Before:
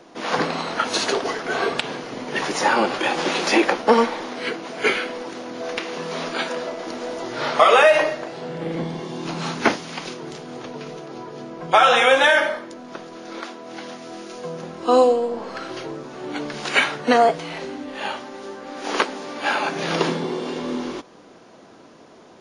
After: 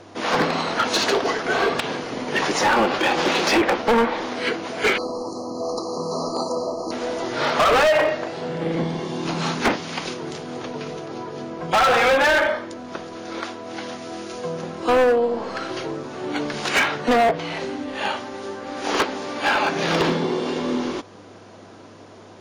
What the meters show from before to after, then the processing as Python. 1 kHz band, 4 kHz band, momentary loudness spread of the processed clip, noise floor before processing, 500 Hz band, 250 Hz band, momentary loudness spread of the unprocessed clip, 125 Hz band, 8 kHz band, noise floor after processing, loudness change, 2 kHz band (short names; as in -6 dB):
-0.5 dB, 0.0 dB, 15 LU, -47 dBFS, 0.0 dB, +1.5 dB, 19 LU, +3.0 dB, +1.0 dB, -44 dBFS, -1.0 dB, -0.5 dB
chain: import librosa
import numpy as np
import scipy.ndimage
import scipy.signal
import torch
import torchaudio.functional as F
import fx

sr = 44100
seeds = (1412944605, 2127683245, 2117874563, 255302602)

y = fx.spec_erase(x, sr, start_s=4.97, length_s=1.94, low_hz=1300.0, high_hz=4000.0)
y = fx.env_lowpass_down(y, sr, base_hz=2200.0, full_db=-12.0)
y = np.clip(y, -10.0 ** (-17.0 / 20.0), 10.0 ** (-17.0 / 20.0))
y = fx.dmg_buzz(y, sr, base_hz=100.0, harmonics=23, level_db=-57.0, tilt_db=-8, odd_only=False)
y = y * librosa.db_to_amplitude(3.0)